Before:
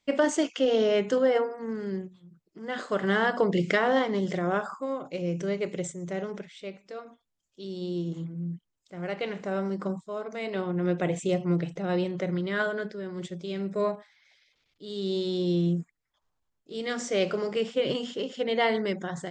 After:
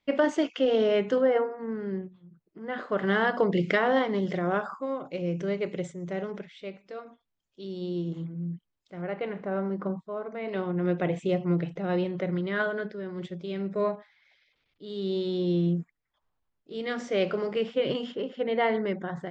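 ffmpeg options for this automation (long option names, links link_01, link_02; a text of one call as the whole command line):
ffmpeg -i in.wav -af "asetnsamples=nb_out_samples=441:pad=0,asendcmd='1.21 lowpass f 2300;2.98 lowpass f 4000;9.02 lowpass f 1900;10.48 lowpass f 3400;18.12 lowpass f 2200',lowpass=3600" out.wav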